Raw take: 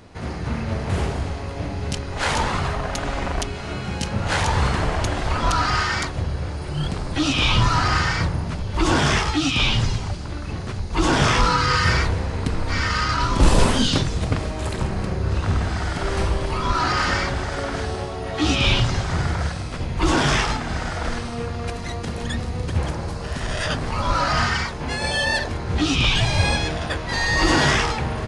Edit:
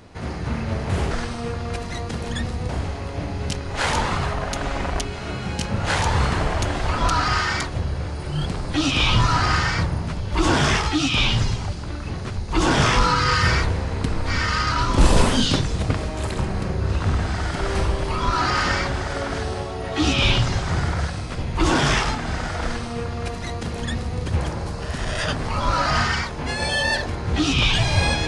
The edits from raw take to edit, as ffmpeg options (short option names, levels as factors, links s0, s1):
-filter_complex "[0:a]asplit=3[s0][s1][s2];[s0]atrim=end=1.112[s3];[s1]atrim=start=21.048:end=22.632[s4];[s2]atrim=start=1.108[s5];[s3][s4]acrossfade=d=0.004:c1=hsin:c2=hsin[s6];[s6][s5]acrossfade=d=0.004:c1=hsin:c2=hsin"